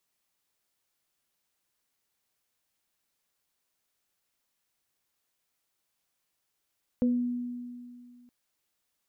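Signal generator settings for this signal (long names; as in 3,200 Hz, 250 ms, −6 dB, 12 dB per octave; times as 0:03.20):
inharmonic partials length 1.27 s, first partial 244 Hz, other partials 497 Hz, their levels −7.5 dB, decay 2.29 s, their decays 0.30 s, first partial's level −21 dB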